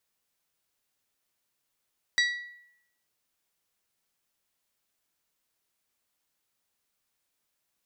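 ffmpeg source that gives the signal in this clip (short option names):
-f lavfi -i "aevalsrc='0.1*pow(10,-3*t/0.76)*sin(2*PI*1940*t)+0.0596*pow(10,-3*t/0.468)*sin(2*PI*3880*t)+0.0355*pow(10,-3*t/0.412)*sin(2*PI*4656*t)+0.0211*pow(10,-3*t/0.352)*sin(2*PI*5820*t)+0.0126*pow(10,-3*t/0.288)*sin(2*PI*7760*t)':d=0.89:s=44100"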